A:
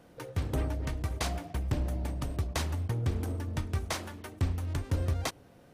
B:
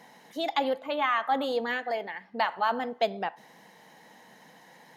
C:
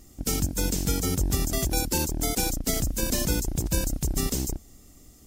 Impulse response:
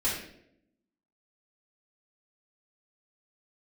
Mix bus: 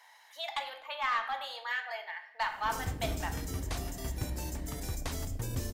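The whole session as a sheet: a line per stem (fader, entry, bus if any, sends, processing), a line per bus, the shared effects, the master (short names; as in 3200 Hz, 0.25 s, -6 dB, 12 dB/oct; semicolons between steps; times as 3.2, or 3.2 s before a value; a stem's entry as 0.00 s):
-6.5 dB, 2.50 s, no send, dry
-4.5 dB, 0.00 s, send -11.5 dB, HPF 870 Hz 24 dB/oct; soft clip -20.5 dBFS, distortion -18 dB
-14.5 dB, 2.45 s, send -14 dB, limiter -18.5 dBFS, peak gain reduction 6 dB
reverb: on, RT60 0.75 s, pre-delay 3 ms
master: dry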